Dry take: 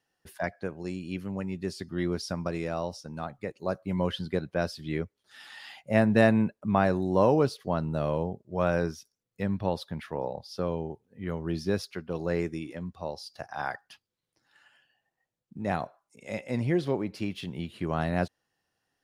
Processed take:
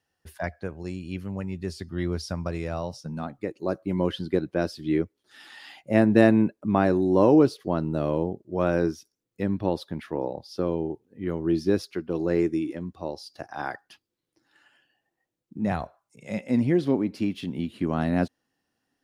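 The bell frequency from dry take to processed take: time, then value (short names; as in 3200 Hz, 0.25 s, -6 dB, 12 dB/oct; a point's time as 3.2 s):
bell +11.5 dB 0.67 oct
2.68 s 77 Hz
3.39 s 320 Hz
15.58 s 320 Hz
15.82 s 63 Hz
16.51 s 260 Hz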